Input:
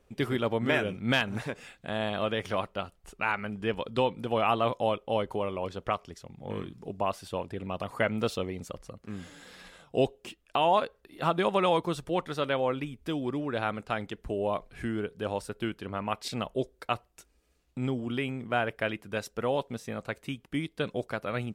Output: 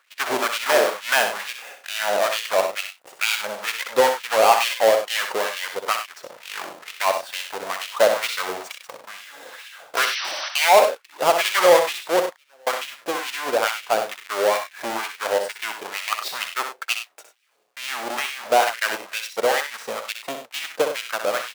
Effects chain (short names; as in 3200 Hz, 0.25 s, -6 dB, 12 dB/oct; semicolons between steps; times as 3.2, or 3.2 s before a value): half-waves squared off; 9.96–10.49 painted sound noise 520–6100 Hz -35 dBFS; 12.23–12.67 flipped gate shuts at -34 dBFS, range -34 dB; LFO high-pass sine 2.2 Hz 510–2800 Hz; in parallel at -10 dB: soft clip -16 dBFS, distortion -11 dB; on the sum: tapped delay 63/98 ms -7.5/-11.5 dB; gain +1 dB